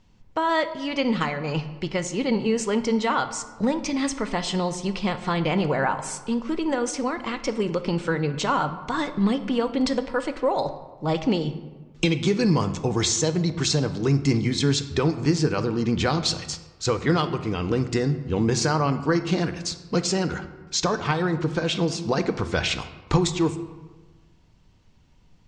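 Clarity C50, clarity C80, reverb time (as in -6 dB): 12.0 dB, 14.0 dB, 1.3 s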